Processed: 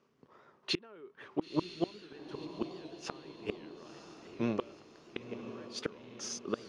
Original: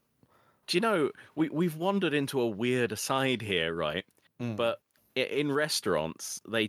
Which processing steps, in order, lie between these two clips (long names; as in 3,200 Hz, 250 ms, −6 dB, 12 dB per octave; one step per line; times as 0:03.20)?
brickwall limiter −20.5 dBFS, peak gain reduction 7.5 dB
loudspeaker in its box 110–5,900 Hz, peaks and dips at 110 Hz −7 dB, 400 Hz +9 dB, 1,100 Hz +5 dB, 4,000 Hz −4 dB
gate with flip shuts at −21 dBFS, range −29 dB
feedback delay with all-pass diffusion 989 ms, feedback 53%, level −9.5 dB
wow of a warped record 78 rpm, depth 100 cents
level +2 dB